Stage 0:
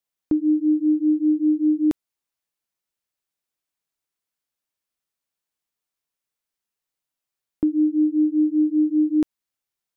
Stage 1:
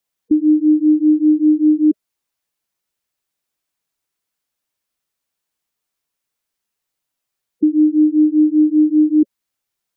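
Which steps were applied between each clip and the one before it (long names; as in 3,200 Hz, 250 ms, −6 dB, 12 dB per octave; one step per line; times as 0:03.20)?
gate on every frequency bin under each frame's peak −15 dB strong
level +6.5 dB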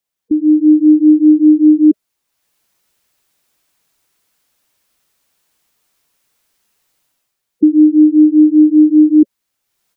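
automatic gain control gain up to 16 dB
level −1 dB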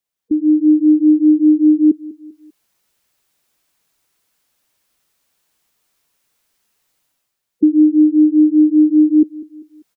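repeating echo 197 ms, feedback 41%, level −18 dB
level −2.5 dB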